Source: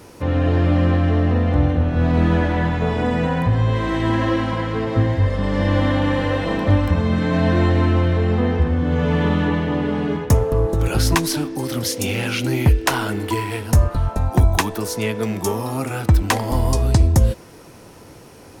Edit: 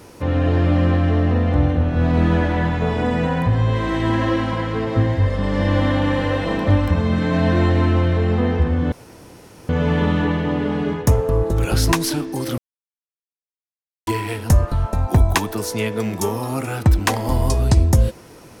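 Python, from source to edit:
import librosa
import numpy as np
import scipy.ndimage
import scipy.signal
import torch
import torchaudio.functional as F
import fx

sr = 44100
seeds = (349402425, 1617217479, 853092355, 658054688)

y = fx.edit(x, sr, fx.insert_room_tone(at_s=8.92, length_s=0.77),
    fx.silence(start_s=11.81, length_s=1.49), tone=tone)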